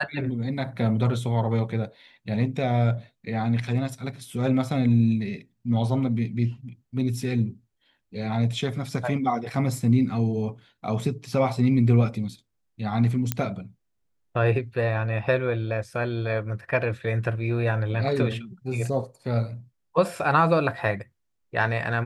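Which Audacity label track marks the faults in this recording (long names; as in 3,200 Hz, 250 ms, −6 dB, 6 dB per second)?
13.320000	13.320000	click −8 dBFS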